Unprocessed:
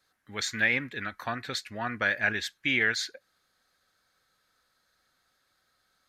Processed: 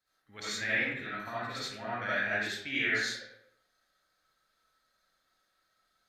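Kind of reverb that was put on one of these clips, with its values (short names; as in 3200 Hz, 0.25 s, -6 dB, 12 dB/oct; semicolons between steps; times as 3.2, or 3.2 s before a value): digital reverb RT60 0.75 s, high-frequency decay 0.7×, pre-delay 30 ms, DRR -9.5 dB; gain -13 dB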